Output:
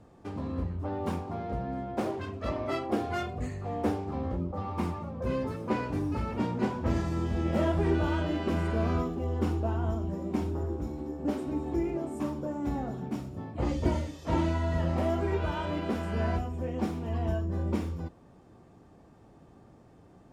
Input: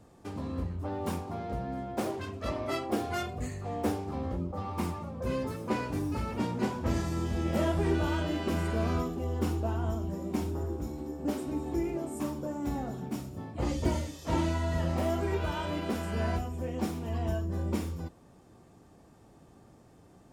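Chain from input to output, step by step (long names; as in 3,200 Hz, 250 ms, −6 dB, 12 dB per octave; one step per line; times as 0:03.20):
low-pass filter 2,800 Hz 6 dB per octave
level +1.5 dB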